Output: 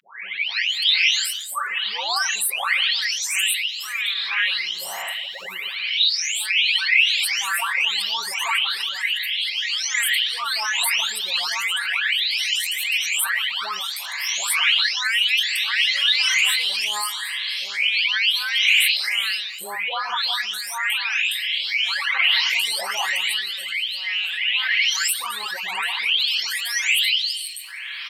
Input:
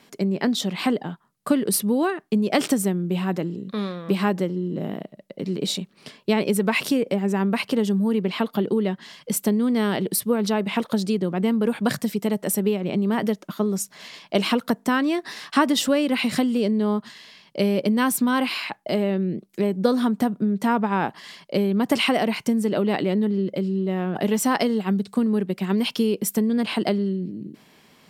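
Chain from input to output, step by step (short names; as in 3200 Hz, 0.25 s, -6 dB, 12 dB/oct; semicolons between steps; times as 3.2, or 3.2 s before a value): spectral delay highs late, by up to 0.696 s; limiter -17.5 dBFS, peak gain reduction 8.5 dB; passive tone stack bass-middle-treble 10-0-10; LFO high-pass sine 0.34 Hz 830–2600 Hz; bell 2800 Hz +13.5 dB 1.5 oct; comb 5.3 ms, depth 32%; darkening echo 0.119 s, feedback 50%, low-pass 1400 Hz, level -23 dB; fast leveller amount 50%; gain -1.5 dB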